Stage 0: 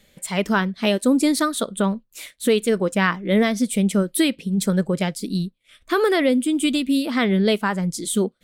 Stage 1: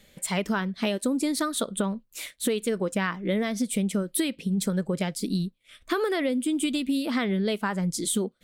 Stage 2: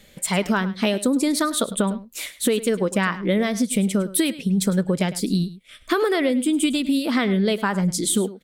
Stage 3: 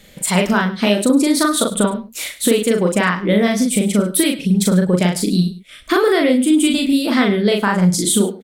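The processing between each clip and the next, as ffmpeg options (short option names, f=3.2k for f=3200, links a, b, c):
-af "acompressor=threshold=-23dB:ratio=6"
-af "aecho=1:1:104:0.158,volume=5.5dB"
-filter_complex "[0:a]asplit=2[a][b];[b]adelay=39,volume=-2.5dB[c];[a][c]amix=inputs=2:normalize=0,volume=4dB"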